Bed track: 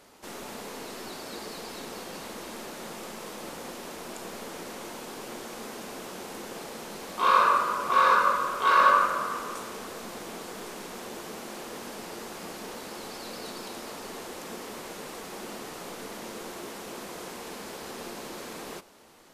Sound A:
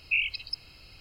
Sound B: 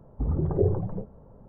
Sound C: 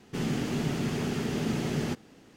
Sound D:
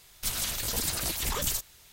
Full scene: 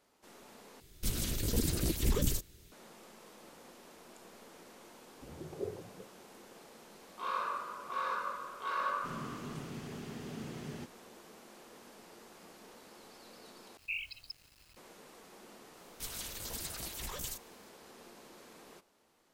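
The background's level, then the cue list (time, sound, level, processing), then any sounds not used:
bed track −15.5 dB
0:00.80: overwrite with D −7.5 dB + low shelf with overshoot 540 Hz +12.5 dB, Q 1.5
0:05.02: mix in B −13.5 dB + resonant band-pass 510 Hz, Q 0.88
0:08.91: mix in C −14 dB
0:13.77: overwrite with A −12 dB + bit-depth reduction 8 bits, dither none
0:15.77: mix in D −11.5 dB

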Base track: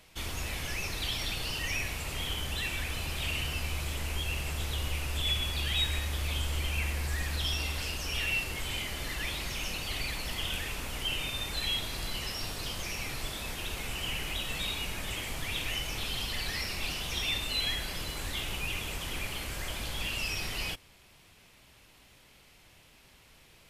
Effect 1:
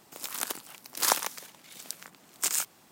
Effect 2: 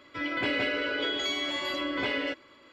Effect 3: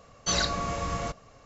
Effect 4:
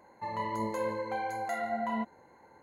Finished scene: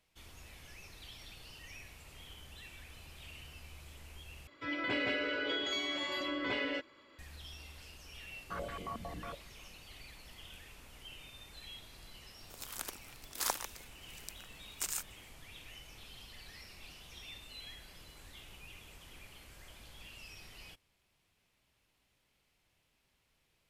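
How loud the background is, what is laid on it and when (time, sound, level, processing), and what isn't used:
base track −18 dB
0:04.47: overwrite with 2 −5.5 dB
0:08.23: mix in 3 −15.5 dB + low-pass on a step sequencer 11 Hz 220–1,900 Hz
0:12.38: mix in 1 −9.5 dB
not used: 4

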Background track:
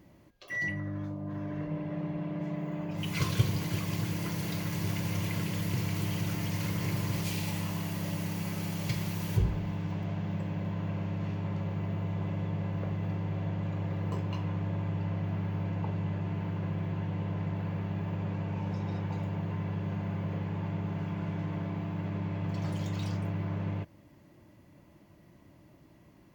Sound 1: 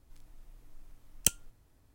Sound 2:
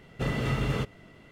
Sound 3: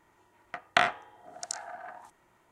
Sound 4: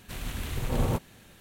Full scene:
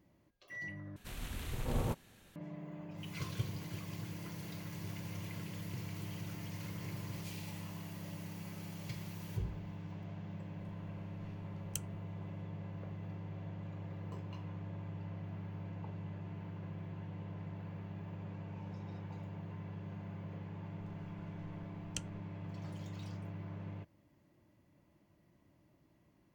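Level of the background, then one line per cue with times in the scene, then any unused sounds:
background track −11.5 dB
0:00.96: overwrite with 4 −8 dB
0:10.49: mix in 1 −15.5 dB
0:20.70: mix in 1 −11 dB + low-pass filter 5,600 Hz
not used: 2, 3

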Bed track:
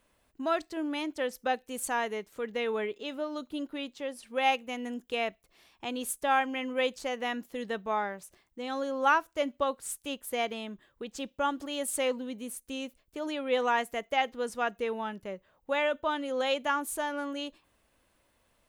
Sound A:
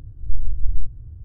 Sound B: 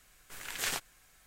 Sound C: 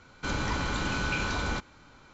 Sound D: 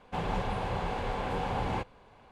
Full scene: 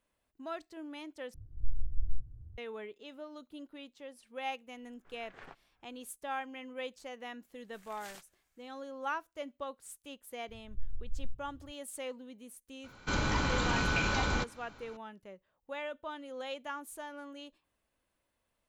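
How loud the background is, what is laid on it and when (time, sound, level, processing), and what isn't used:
bed track −11.5 dB
0:01.34: overwrite with A −12 dB
0:04.75: mix in B −10 dB + low-pass filter 1,300 Hz
0:07.42: mix in B −17.5 dB
0:10.48: mix in A −17.5 dB
0:12.84: mix in C −0.5 dB
not used: D

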